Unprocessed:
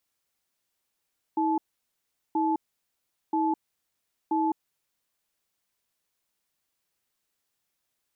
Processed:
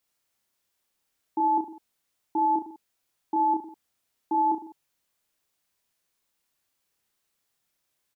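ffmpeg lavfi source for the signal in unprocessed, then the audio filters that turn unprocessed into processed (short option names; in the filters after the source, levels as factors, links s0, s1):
-f lavfi -i "aevalsrc='0.0562*(sin(2*PI*320*t)+sin(2*PI*866*t))*clip(min(mod(t,0.98),0.21-mod(t,0.98))/0.005,0,1)':d=3.16:s=44100"
-af "aecho=1:1:30|64.5|104.2|149.8|202.3:0.631|0.398|0.251|0.158|0.1"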